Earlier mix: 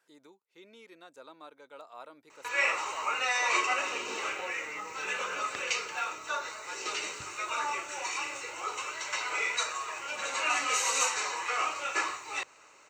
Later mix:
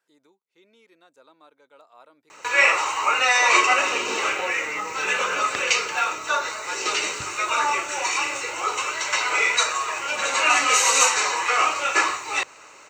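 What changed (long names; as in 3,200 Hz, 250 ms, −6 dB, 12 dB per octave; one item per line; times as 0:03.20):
speech −4.0 dB
background +10.5 dB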